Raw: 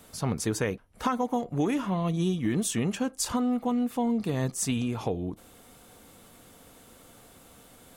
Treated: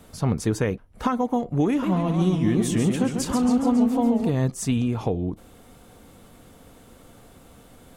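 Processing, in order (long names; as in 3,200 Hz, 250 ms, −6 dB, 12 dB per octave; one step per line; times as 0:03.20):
spectral tilt −1.5 dB per octave
0:01.68–0:04.29: feedback echo with a swinging delay time 139 ms, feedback 65%, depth 190 cents, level −6 dB
level +2.5 dB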